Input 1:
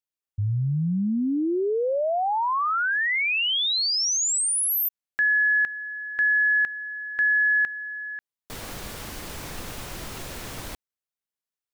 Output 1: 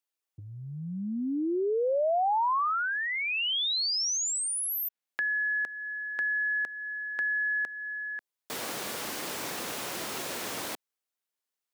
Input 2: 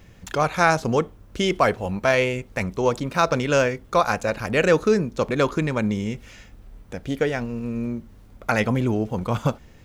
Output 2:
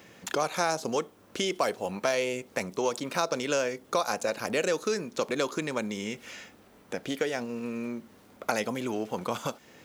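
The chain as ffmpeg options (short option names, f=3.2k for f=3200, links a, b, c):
-filter_complex "[0:a]acrossover=split=1000|3800[a][b][c];[a]acompressor=threshold=-30dB:ratio=4[d];[b]acompressor=threshold=-41dB:ratio=4[e];[c]acompressor=threshold=-36dB:ratio=4[f];[d][e][f]amix=inputs=3:normalize=0,highpass=270,volume=3dB"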